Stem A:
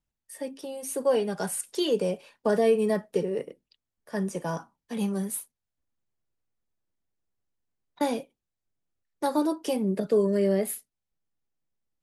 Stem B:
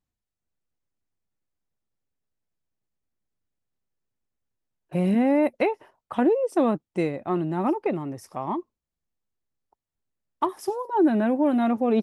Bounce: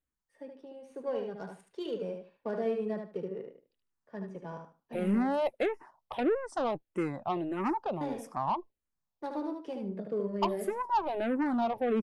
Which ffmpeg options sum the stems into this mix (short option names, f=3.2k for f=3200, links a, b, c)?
-filter_complex "[0:a]adynamicsmooth=sensitivity=1.5:basefreq=2.1k,volume=-11dB,asplit=2[a][b];[b]volume=-5.5dB[c];[1:a]equalizer=f=960:w=1.1:g=7,aeval=exprs='(tanh(8.91*val(0)+0.2)-tanh(0.2))/8.91':c=same,asplit=2[d][e];[e]afreqshift=-1.6[f];[d][f]amix=inputs=2:normalize=1,volume=-3dB[g];[c]aecho=0:1:75|150|225:1|0.21|0.0441[h];[a][g][h]amix=inputs=3:normalize=0"